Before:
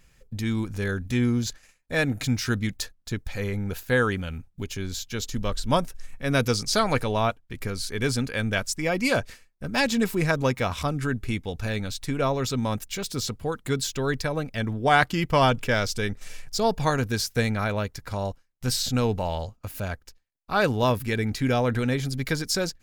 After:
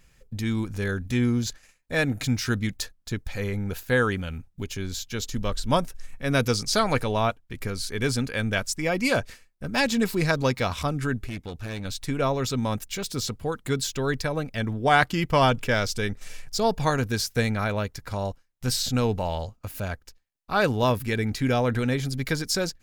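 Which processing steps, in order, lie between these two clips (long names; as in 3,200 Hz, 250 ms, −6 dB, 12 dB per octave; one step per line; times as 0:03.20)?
0:10.08–0:10.73: parametric band 4,400 Hz +10 dB 0.38 octaves
0:11.26–0:11.85: tube saturation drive 29 dB, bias 0.65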